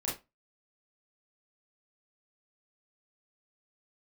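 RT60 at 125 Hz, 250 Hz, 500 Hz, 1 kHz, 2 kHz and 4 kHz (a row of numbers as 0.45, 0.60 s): 0.25, 0.25, 0.25, 0.25, 0.20, 0.20 s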